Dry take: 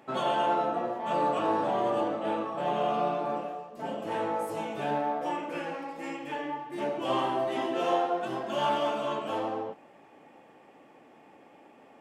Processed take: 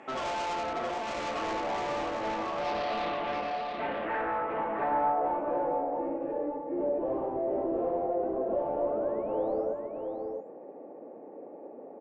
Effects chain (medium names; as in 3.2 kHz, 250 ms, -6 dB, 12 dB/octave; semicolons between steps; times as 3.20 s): high-pass 230 Hz 12 dB/octave; resonant high shelf 3.3 kHz -11 dB, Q 1.5; in parallel at 0 dB: compression, threshold -41 dBFS, peak gain reduction 17.5 dB; on the sum: saturation -30.5 dBFS, distortion -8 dB; painted sound rise, 8.62–9.82 s, 620–8000 Hz -42 dBFS; low-pass sweep 7.1 kHz -> 520 Hz, 2.27–5.76 s; delay 675 ms -5.5 dB